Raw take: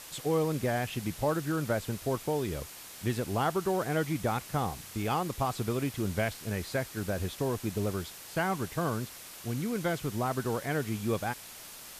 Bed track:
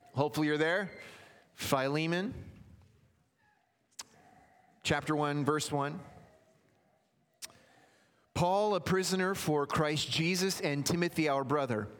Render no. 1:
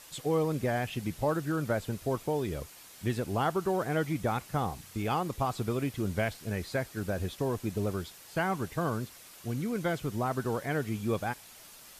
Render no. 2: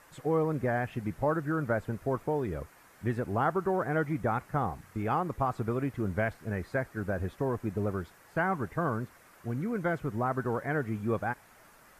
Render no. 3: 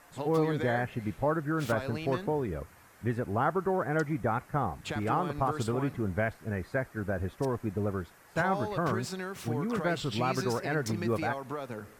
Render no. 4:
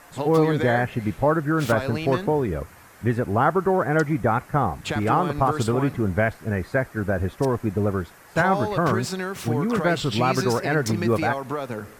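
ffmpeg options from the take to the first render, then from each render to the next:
ffmpeg -i in.wav -af "afftdn=noise_reduction=6:noise_floor=-47" out.wav
ffmpeg -i in.wav -af "highshelf=frequency=2400:width_type=q:width=1.5:gain=-11.5" out.wav
ffmpeg -i in.wav -i bed.wav -filter_complex "[1:a]volume=-6.5dB[link_01];[0:a][link_01]amix=inputs=2:normalize=0" out.wav
ffmpeg -i in.wav -af "volume=8.5dB" out.wav

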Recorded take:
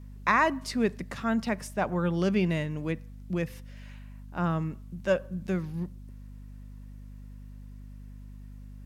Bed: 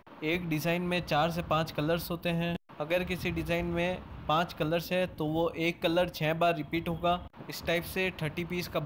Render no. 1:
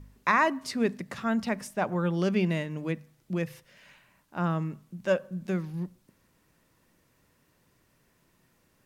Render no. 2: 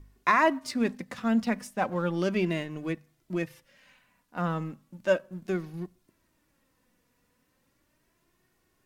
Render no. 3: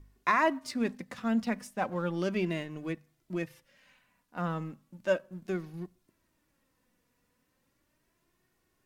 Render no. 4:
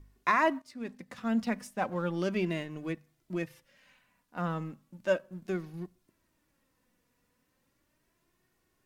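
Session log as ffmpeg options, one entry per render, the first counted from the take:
ffmpeg -i in.wav -af "bandreject=frequency=50:width_type=h:width=4,bandreject=frequency=100:width_type=h:width=4,bandreject=frequency=150:width_type=h:width=4,bandreject=frequency=200:width_type=h:width=4,bandreject=frequency=250:width_type=h:width=4" out.wav
ffmpeg -i in.wav -filter_complex "[0:a]asplit=2[link_01][link_02];[link_02]aeval=exprs='sgn(val(0))*max(abs(val(0))-0.00794,0)':channel_layout=same,volume=-3dB[link_03];[link_01][link_03]amix=inputs=2:normalize=0,flanger=delay=2.7:depth=1.4:regen=37:speed=0.35:shape=sinusoidal" out.wav
ffmpeg -i in.wav -af "volume=-3.5dB" out.wav
ffmpeg -i in.wav -filter_complex "[0:a]asplit=2[link_01][link_02];[link_01]atrim=end=0.62,asetpts=PTS-STARTPTS,afade=type=out:start_time=0.616:duration=0.004:curve=hsin:silence=0.125893[link_03];[link_02]atrim=start=0.62,asetpts=PTS-STARTPTS,afade=type=in:duration=0.78:silence=0.125893[link_04];[link_03][link_04]concat=n=2:v=0:a=1" out.wav

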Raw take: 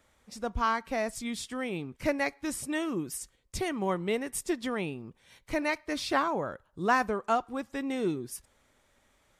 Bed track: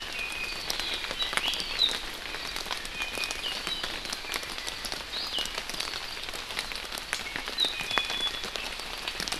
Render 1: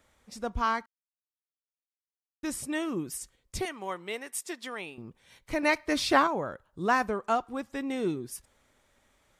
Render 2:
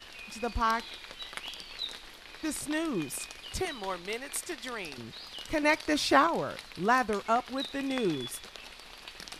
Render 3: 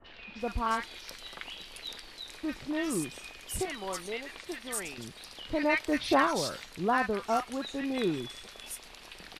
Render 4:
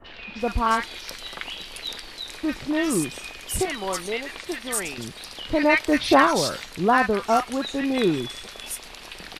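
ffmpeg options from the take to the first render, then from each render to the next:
ffmpeg -i in.wav -filter_complex "[0:a]asettb=1/sr,asplit=3[link_01][link_02][link_03];[link_01]atrim=end=3.654[link_04];[link_02]atrim=start=3.65:end=4.98,asetpts=PTS-STARTPTS,afade=type=in:duration=0.004:curve=qsin,afade=type=out:start_time=1.326:duration=0.004:curve=qsin,highpass=frequency=970:poles=1[link_05];[link_03]atrim=start=4.976[link_06];[link_04][link_05]acrossfade=duration=0.004:curve1=hsin:curve2=qsin[link_07];[link_07][link_06]acrossfade=duration=0.004:curve1=qsin:curve2=hsin,asettb=1/sr,asplit=3[link_08][link_09][link_10];[link_08]atrim=end=5.634[link_11];[link_09]atrim=start=5.63:end=6.27,asetpts=PTS-STARTPTS,afade=type=in:duration=0.004:curve=qsin,afade=type=out:start_time=0.636:duration=0.004:curve=qsin,acontrast=26[link_12];[link_10]atrim=start=6.266[link_13];[link_11][link_12]acrossfade=duration=0.004:curve1=hsin:curve2=qsin[link_14];[link_14][link_13]acrossfade=duration=0.004:curve1=qsin:curve2=hsin,asplit=3[link_15][link_16][link_17];[link_15]atrim=end=0.86,asetpts=PTS-STARTPTS,afade=type=out:start_time=0.856:duration=0.004:curve=hsin[link_18];[link_16]atrim=start=0.86:end=2.43,asetpts=PTS-STARTPTS,volume=0[link_19];[link_17]atrim=start=2.43,asetpts=PTS-STARTPTS,afade=type=in:duration=0.004:curve=hsin[link_20];[link_18][link_19][link_20]concat=n=3:v=0:a=1" out.wav
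ffmpeg -i in.wav -i bed.wav -filter_complex "[1:a]volume=-12dB[link_01];[0:a][link_01]amix=inputs=2:normalize=0" out.wav
ffmpeg -i in.wav -filter_complex "[0:a]acrossover=split=1200|4100[link_01][link_02][link_03];[link_02]adelay=40[link_04];[link_03]adelay=390[link_05];[link_01][link_04][link_05]amix=inputs=3:normalize=0" out.wav
ffmpeg -i in.wav -af "volume=8.5dB" out.wav

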